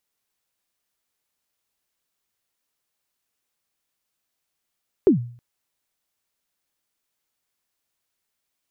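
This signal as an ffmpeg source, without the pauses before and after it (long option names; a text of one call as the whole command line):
ffmpeg -f lavfi -i "aevalsrc='0.398*pow(10,-3*t/0.48)*sin(2*PI*(430*0.116/log(120/430)*(exp(log(120/430)*min(t,0.116)/0.116)-1)+120*max(t-0.116,0)))':duration=0.32:sample_rate=44100" out.wav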